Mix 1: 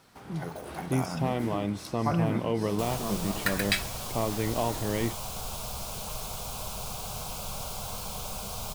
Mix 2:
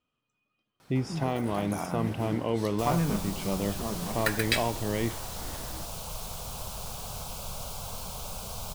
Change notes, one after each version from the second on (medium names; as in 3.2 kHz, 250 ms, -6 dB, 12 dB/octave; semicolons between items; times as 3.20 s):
first sound: entry +0.80 s; reverb: off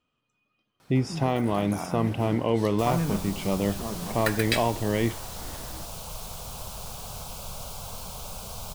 speech +4.5 dB